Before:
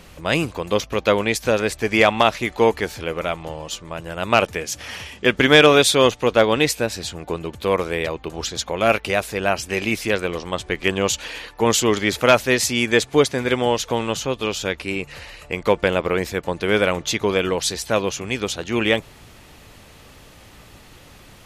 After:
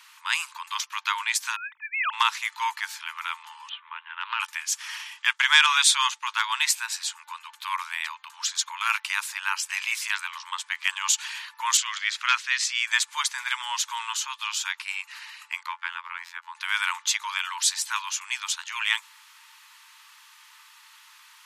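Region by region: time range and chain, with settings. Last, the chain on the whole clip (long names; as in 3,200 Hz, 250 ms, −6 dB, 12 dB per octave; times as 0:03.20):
0:01.56–0:02.13: three sine waves on the formant tracks + spectral tilt −2.5 dB per octave
0:03.69–0:04.40: Butterworth low-pass 3,500 Hz 72 dB per octave + downward compressor, threshold −17 dBFS + highs frequency-modulated by the lows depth 0.21 ms
0:05.33–0:06.34: downward expander −35 dBFS + low-pass filter 11,000 Hz
0:11.77–0:12.87: low-pass filter 5,000 Hz + parametric band 830 Hz −13.5 dB 0.63 octaves
0:15.66–0:16.55: low-pass filter 1,900 Hz 6 dB per octave + phases set to zero 86.7 Hz
whole clip: dynamic equaliser 7,800 Hz, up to +6 dB, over −42 dBFS, Q 1.7; Chebyshev high-pass filter 890 Hz, order 8; level −2 dB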